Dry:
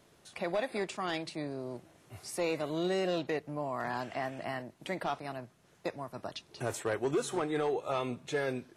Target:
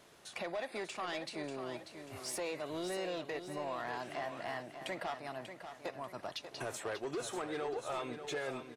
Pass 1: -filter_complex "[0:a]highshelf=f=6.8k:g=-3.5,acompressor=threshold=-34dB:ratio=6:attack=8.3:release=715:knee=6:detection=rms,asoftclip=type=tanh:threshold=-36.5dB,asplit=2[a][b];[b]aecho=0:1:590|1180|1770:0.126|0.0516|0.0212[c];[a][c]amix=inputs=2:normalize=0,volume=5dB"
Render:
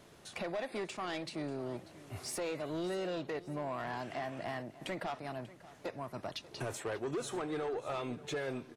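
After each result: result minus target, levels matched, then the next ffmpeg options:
echo-to-direct -9 dB; 250 Hz band +2.5 dB
-filter_complex "[0:a]highshelf=f=6.8k:g=-3.5,acompressor=threshold=-34dB:ratio=6:attack=8.3:release=715:knee=6:detection=rms,asoftclip=type=tanh:threshold=-36.5dB,asplit=2[a][b];[b]aecho=0:1:590|1180|1770|2360|2950:0.355|0.145|0.0596|0.0245|0.01[c];[a][c]amix=inputs=2:normalize=0,volume=5dB"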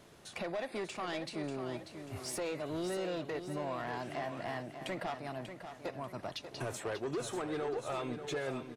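250 Hz band +2.5 dB
-filter_complex "[0:a]highshelf=f=6.8k:g=-3.5,acompressor=threshold=-34dB:ratio=6:attack=8.3:release=715:knee=6:detection=rms,lowshelf=f=320:g=-10,asoftclip=type=tanh:threshold=-36.5dB,asplit=2[a][b];[b]aecho=0:1:590|1180|1770|2360|2950:0.355|0.145|0.0596|0.0245|0.01[c];[a][c]amix=inputs=2:normalize=0,volume=5dB"

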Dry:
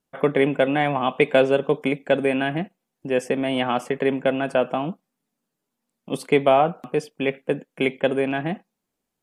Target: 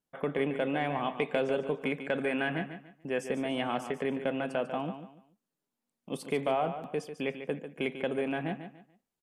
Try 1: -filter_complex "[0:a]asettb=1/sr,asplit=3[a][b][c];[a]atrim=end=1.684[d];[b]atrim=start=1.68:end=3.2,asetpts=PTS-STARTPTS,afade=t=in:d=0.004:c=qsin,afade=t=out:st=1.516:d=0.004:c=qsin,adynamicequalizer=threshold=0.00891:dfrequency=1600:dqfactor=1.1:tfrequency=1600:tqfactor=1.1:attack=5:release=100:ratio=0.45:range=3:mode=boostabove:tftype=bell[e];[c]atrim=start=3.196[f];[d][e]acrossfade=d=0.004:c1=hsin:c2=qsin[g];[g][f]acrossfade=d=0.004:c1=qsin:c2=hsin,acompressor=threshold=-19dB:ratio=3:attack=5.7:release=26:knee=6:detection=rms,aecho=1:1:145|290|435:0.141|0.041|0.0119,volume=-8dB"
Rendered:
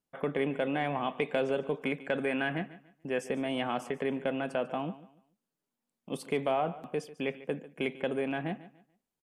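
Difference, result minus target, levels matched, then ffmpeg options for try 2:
echo-to-direct -7 dB
-filter_complex "[0:a]asettb=1/sr,asplit=3[a][b][c];[a]atrim=end=1.684[d];[b]atrim=start=1.68:end=3.2,asetpts=PTS-STARTPTS,afade=t=in:d=0.004:c=qsin,afade=t=out:st=1.516:d=0.004:c=qsin,adynamicequalizer=threshold=0.00891:dfrequency=1600:dqfactor=1.1:tfrequency=1600:tqfactor=1.1:attack=5:release=100:ratio=0.45:range=3:mode=boostabove:tftype=bell[e];[c]atrim=start=3.196[f];[d][e]acrossfade=d=0.004:c1=hsin:c2=qsin[g];[g][f]acrossfade=d=0.004:c1=qsin:c2=hsin,acompressor=threshold=-19dB:ratio=3:attack=5.7:release=26:knee=6:detection=rms,aecho=1:1:145|290|435:0.316|0.0917|0.0266,volume=-8dB"

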